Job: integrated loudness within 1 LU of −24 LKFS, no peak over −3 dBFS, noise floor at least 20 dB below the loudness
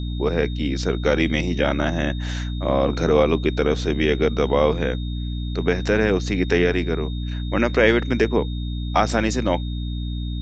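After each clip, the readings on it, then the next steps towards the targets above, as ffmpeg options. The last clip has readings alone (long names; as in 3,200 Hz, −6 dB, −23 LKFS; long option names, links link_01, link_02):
mains hum 60 Hz; hum harmonics up to 300 Hz; level of the hum −24 dBFS; interfering tone 3,700 Hz; level of the tone −40 dBFS; integrated loudness −21.5 LKFS; sample peak −2.5 dBFS; target loudness −24.0 LKFS
→ -af "bandreject=frequency=60:width_type=h:width=6,bandreject=frequency=120:width_type=h:width=6,bandreject=frequency=180:width_type=h:width=6,bandreject=frequency=240:width_type=h:width=6,bandreject=frequency=300:width_type=h:width=6"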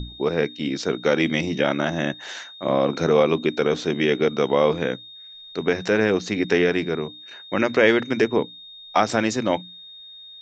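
mains hum none found; interfering tone 3,700 Hz; level of the tone −40 dBFS
→ -af "bandreject=frequency=3700:width=30"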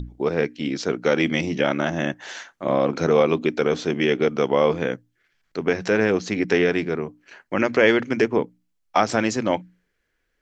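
interfering tone none found; integrated loudness −22.0 LKFS; sample peak −3.0 dBFS; target loudness −24.0 LKFS
→ -af "volume=-2dB"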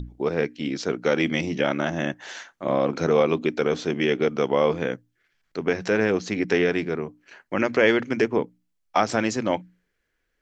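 integrated loudness −24.0 LKFS; sample peak −5.0 dBFS; background noise floor −75 dBFS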